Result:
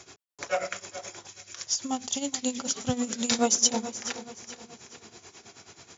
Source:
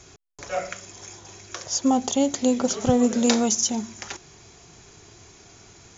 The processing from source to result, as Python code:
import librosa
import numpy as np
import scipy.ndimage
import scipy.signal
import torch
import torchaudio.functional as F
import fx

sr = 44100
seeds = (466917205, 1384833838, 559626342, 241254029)

y = scipy.signal.sosfilt(scipy.signal.butter(2, 82.0, 'highpass', fs=sr, output='sos'), x)
y = fx.low_shelf(y, sr, hz=210.0, db=-9.0)
y = fx.notch(y, sr, hz=6500.0, q=18.0)
y = fx.echo_feedback(y, sr, ms=422, feedback_pct=44, wet_db=-14.0)
y = y * (1.0 - 0.78 / 2.0 + 0.78 / 2.0 * np.cos(2.0 * np.pi * 9.3 * (np.arange(len(y)) / sr)))
y = fx.peak_eq(y, sr, hz=560.0, db=-13.0, octaves=2.6, at=(1.27, 3.39))
y = F.gain(torch.from_numpy(y), 4.0).numpy()